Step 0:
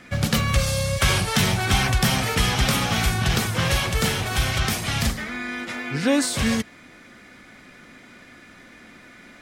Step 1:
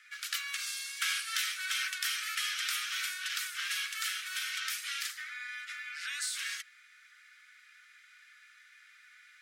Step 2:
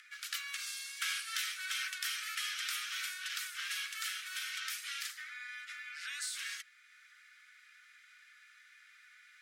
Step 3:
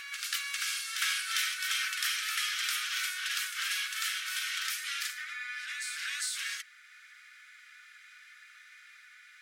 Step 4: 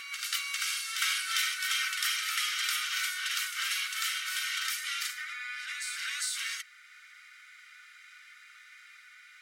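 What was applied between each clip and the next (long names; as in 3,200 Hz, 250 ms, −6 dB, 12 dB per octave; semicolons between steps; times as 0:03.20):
Butterworth high-pass 1,300 Hz 72 dB per octave; level −9 dB
upward compression, threshold −51 dBFS; level −4 dB
backwards echo 401 ms −5.5 dB; level +5 dB
notch comb filter 850 Hz; level +2.5 dB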